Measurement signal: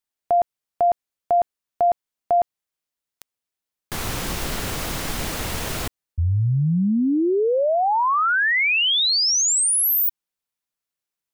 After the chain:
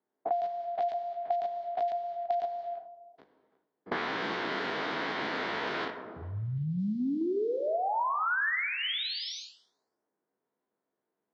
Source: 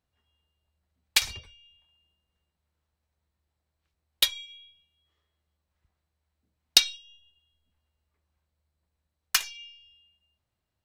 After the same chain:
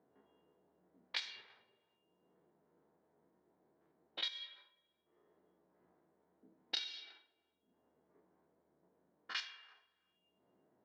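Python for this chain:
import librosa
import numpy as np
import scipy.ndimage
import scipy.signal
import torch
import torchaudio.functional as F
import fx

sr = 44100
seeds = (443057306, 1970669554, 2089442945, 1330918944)

y = fx.spec_steps(x, sr, hold_ms=50)
y = fx.cabinet(y, sr, low_hz=400.0, low_slope=12, high_hz=4500.0, hz=(550.0, 800.0, 1200.0, 2600.0), db=(-8, -5, -5, -8))
y = y + 10.0 ** (-21.5 / 20.0) * np.pad(y, (int(336 * sr / 1000.0), 0))[:len(y)]
y = fx.rev_gated(y, sr, seeds[0], gate_ms=450, shape='falling', drr_db=7.0)
y = fx.env_lowpass(y, sr, base_hz=510.0, full_db=-27.5)
y = fx.band_squash(y, sr, depth_pct=100)
y = y * 10.0 ** (-4.5 / 20.0)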